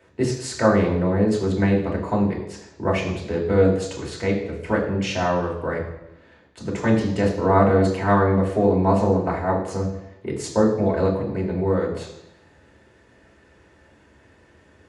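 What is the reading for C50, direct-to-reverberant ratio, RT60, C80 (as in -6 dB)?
6.5 dB, -2.0 dB, 0.90 s, 9.0 dB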